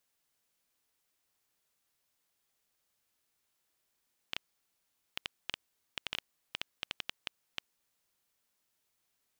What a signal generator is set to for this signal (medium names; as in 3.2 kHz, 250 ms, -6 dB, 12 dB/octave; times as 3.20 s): random clicks 5.7 per s -16.5 dBFS 3.38 s